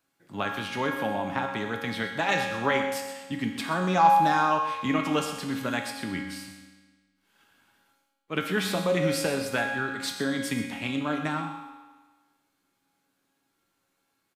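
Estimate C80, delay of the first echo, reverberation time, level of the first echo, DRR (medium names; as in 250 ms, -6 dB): 5.0 dB, 126 ms, 1.4 s, -12.0 dB, 0.5 dB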